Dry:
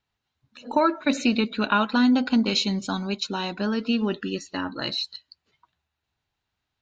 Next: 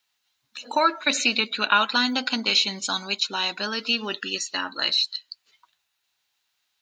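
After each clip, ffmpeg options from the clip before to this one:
-filter_complex "[0:a]highpass=f=1000:p=1,highshelf=f=2800:g=12,acrossover=split=3300[s0][s1];[s1]alimiter=limit=0.0841:level=0:latency=1:release=363[s2];[s0][s2]amix=inputs=2:normalize=0,volume=1.41"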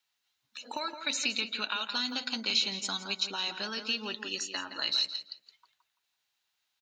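-filter_complex "[0:a]acrossover=split=140|3000[s0][s1][s2];[s1]acompressor=threshold=0.0316:ratio=4[s3];[s0][s3][s2]amix=inputs=3:normalize=0,asplit=2[s4][s5];[s5]adelay=168,lowpass=f=3200:p=1,volume=0.376,asplit=2[s6][s7];[s7]adelay=168,lowpass=f=3200:p=1,volume=0.27,asplit=2[s8][s9];[s9]adelay=168,lowpass=f=3200:p=1,volume=0.27[s10];[s4][s6][s8][s10]amix=inputs=4:normalize=0,volume=0.501"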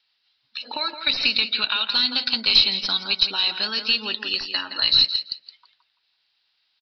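-filter_complex "[0:a]crystalizer=i=4.5:c=0,asplit=2[s0][s1];[s1]aeval=exprs='clip(val(0),-1,0.0794)':c=same,volume=0.562[s2];[s0][s2]amix=inputs=2:normalize=0,aresample=11025,aresample=44100"

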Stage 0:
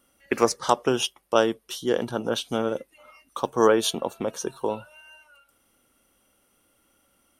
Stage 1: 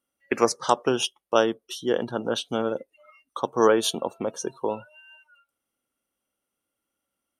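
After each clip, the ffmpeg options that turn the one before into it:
-af "afftdn=nr=17:nf=-43,lowshelf=f=66:g=-9.5"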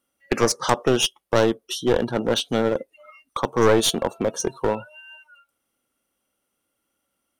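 -filter_complex "[0:a]asplit=2[s0][s1];[s1]alimiter=limit=0.211:level=0:latency=1:release=21,volume=1.12[s2];[s0][s2]amix=inputs=2:normalize=0,aeval=exprs='clip(val(0),-1,0.126)':c=same"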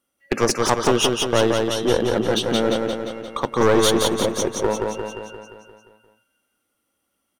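-af "aecho=1:1:175|350|525|700|875|1050|1225|1400:0.668|0.388|0.225|0.13|0.0756|0.0439|0.0254|0.0148"

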